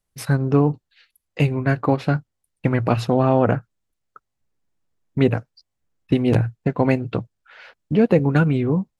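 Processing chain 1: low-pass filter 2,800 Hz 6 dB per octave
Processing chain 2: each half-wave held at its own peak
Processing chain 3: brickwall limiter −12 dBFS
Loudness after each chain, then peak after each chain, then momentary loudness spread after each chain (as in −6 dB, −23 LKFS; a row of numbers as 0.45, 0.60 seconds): −20.5, −16.0, −24.0 LKFS; −4.5, −4.0, −12.0 dBFS; 10, 9, 9 LU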